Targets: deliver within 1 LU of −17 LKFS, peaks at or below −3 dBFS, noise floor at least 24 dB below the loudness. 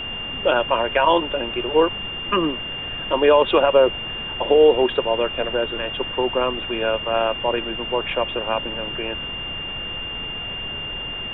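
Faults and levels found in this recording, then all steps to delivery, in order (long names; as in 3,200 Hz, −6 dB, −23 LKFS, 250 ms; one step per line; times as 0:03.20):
interfering tone 2,800 Hz; level of the tone −28 dBFS; background noise floor −30 dBFS; target noise floor −45 dBFS; integrated loudness −21.0 LKFS; sample peak −3.5 dBFS; target loudness −17.0 LKFS
→ notch filter 2,800 Hz, Q 30
noise reduction from a noise print 15 dB
level +4 dB
brickwall limiter −3 dBFS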